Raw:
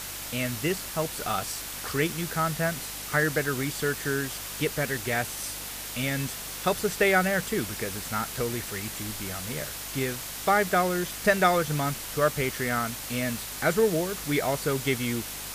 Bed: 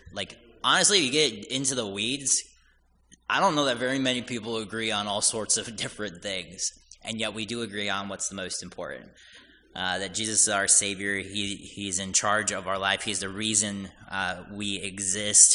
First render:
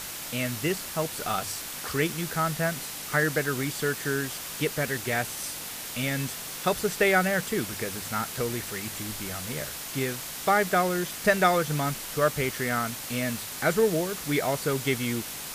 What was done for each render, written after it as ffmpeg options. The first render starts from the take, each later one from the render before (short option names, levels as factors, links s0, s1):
-af "bandreject=f=50:t=h:w=4,bandreject=f=100:t=h:w=4"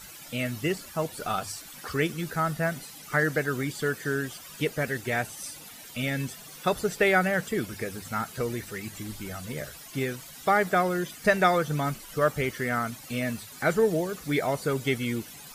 -af "afftdn=nr=14:nf=-38"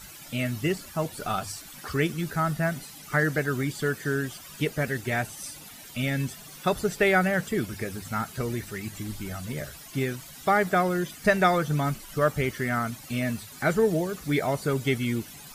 -af "lowshelf=f=210:g=5,bandreject=f=490:w=12"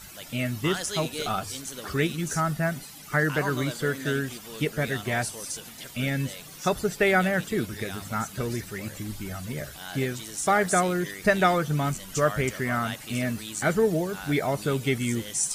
-filter_complex "[1:a]volume=0.266[s0];[0:a][s0]amix=inputs=2:normalize=0"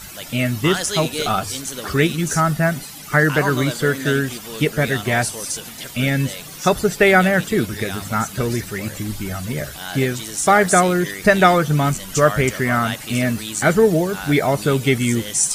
-af "volume=2.66,alimiter=limit=0.891:level=0:latency=1"